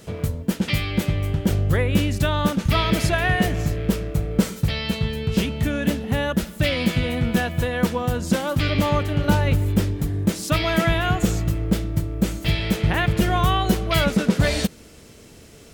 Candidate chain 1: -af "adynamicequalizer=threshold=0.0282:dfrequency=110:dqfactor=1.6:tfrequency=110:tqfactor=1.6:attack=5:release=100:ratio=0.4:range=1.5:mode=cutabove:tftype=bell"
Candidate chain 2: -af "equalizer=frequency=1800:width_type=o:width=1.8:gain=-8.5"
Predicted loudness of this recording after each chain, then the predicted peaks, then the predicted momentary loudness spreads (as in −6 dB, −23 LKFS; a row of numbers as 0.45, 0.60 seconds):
−22.5, −23.0 LKFS; −6.5, −7.0 dBFS; 5, 5 LU